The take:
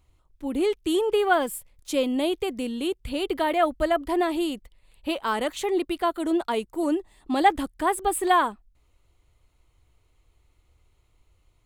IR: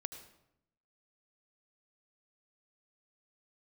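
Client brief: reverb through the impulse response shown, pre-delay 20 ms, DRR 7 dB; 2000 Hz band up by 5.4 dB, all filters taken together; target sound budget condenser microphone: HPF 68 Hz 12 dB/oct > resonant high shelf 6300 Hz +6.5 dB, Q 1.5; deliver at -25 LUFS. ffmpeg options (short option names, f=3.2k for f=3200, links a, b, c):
-filter_complex "[0:a]equalizer=f=2k:t=o:g=7.5,asplit=2[a][b];[1:a]atrim=start_sample=2205,adelay=20[c];[b][c]afir=irnorm=-1:irlink=0,volume=-5dB[d];[a][d]amix=inputs=2:normalize=0,highpass=68,highshelf=f=6.3k:t=q:w=1.5:g=6.5,volume=-1.5dB"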